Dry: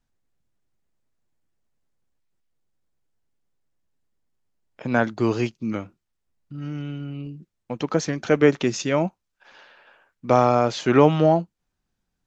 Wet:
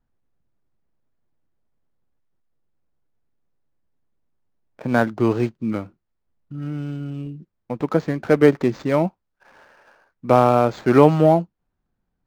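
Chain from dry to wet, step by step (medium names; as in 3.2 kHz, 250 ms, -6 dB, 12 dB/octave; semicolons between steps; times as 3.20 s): median filter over 15 samples; decimation joined by straight lines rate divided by 4×; trim +3 dB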